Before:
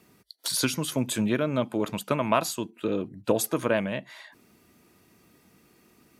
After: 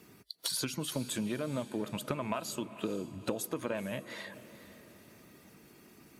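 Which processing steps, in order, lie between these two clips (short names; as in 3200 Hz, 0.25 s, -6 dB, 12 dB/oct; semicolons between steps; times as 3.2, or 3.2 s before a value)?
bin magnitudes rounded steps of 15 dB; compressor 6:1, threshold -35 dBFS, peak gain reduction 16 dB; diffused feedback echo 0.459 s, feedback 42%, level -14.5 dB; gain +2.5 dB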